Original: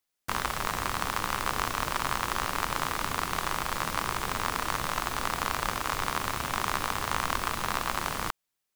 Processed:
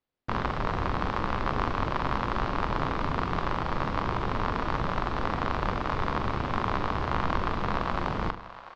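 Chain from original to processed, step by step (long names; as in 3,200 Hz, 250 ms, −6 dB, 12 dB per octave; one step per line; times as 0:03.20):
low-pass filter 4,600 Hz 24 dB per octave
tilt shelving filter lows +7.5 dB, about 1,100 Hz
double-tracking delay 43 ms −11 dB
echo with a time of its own for lows and highs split 500 Hz, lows 101 ms, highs 690 ms, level −15 dB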